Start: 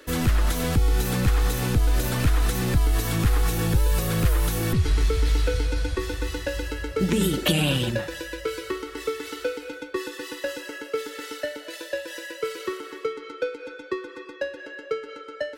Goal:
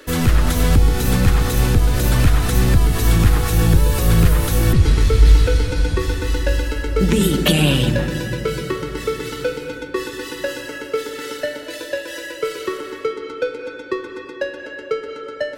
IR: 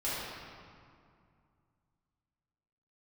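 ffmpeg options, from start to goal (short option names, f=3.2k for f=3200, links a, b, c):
-filter_complex "[0:a]asplit=2[a][b];[1:a]atrim=start_sample=2205,asetrate=22050,aresample=44100,lowshelf=f=270:g=11[c];[b][c]afir=irnorm=-1:irlink=0,volume=-23.5dB[d];[a][d]amix=inputs=2:normalize=0,volume=5dB"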